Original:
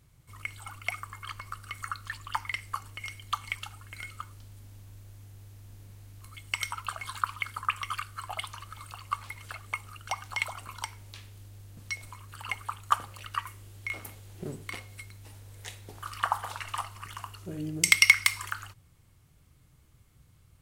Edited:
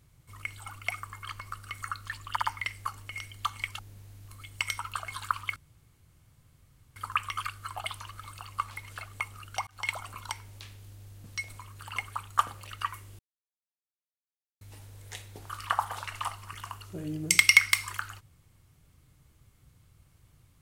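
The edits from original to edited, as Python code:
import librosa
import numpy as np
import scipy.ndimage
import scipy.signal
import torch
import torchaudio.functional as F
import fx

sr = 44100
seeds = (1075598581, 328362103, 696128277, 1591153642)

y = fx.edit(x, sr, fx.stutter(start_s=2.3, slice_s=0.06, count=3),
    fx.cut(start_s=3.67, length_s=2.05),
    fx.insert_room_tone(at_s=7.49, length_s=1.4),
    fx.fade_in_span(start_s=10.2, length_s=0.31, curve='qsin'),
    fx.silence(start_s=13.72, length_s=1.42), tone=tone)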